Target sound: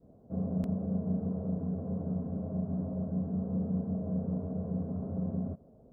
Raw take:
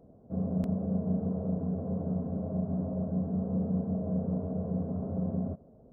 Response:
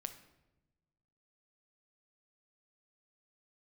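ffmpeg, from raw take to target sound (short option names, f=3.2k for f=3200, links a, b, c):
-af "adynamicequalizer=threshold=0.00562:dfrequency=640:dqfactor=1:tfrequency=640:tqfactor=1:attack=5:release=100:ratio=0.375:range=1.5:mode=cutabove:tftype=bell,volume=-1.5dB"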